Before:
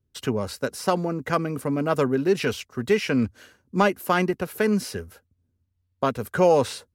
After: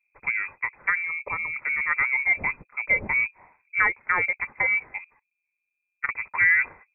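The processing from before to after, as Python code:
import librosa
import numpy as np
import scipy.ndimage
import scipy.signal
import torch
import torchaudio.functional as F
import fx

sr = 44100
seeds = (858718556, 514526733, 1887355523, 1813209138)

y = fx.spec_box(x, sr, start_s=1.03, length_s=0.51, low_hz=400.0, high_hz=1200.0, gain_db=-17)
y = fx.freq_invert(y, sr, carrier_hz=2500)
y = fx.level_steps(y, sr, step_db=20, at=(4.98, 6.09))
y = F.gain(torch.from_numpy(y), -2.0).numpy()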